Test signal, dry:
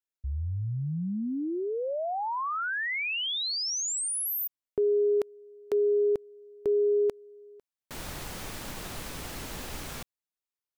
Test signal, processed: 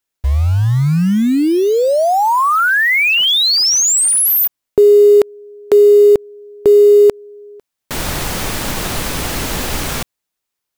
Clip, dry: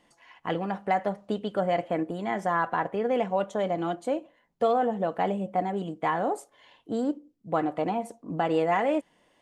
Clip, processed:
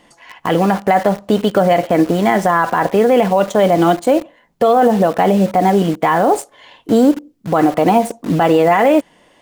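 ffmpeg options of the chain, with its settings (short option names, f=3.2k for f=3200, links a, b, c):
-filter_complex "[0:a]asplit=2[a][b];[b]acrusher=bits=6:mix=0:aa=0.000001,volume=-4dB[c];[a][c]amix=inputs=2:normalize=0,alimiter=level_in=16.5dB:limit=-1dB:release=50:level=0:latency=1,volume=-2.5dB"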